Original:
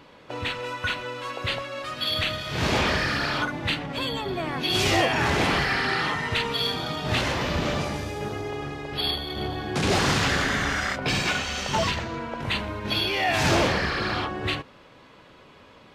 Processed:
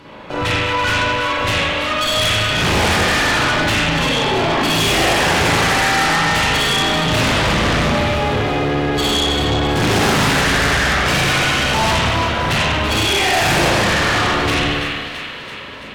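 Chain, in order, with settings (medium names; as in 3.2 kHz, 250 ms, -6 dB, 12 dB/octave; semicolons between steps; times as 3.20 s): Chebyshev shaper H 8 -19 dB, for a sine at -11.5 dBFS; feedback echo behind a high-pass 333 ms, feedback 62%, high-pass 1.7 kHz, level -10 dB; spring tank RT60 1.4 s, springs 37/55 ms, chirp 45 ms, DRR -7.5 dB; in parallel at -6.5 dB: sine folder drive 8 dB, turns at -10.5 dBFS; on the sum: trim -2 dB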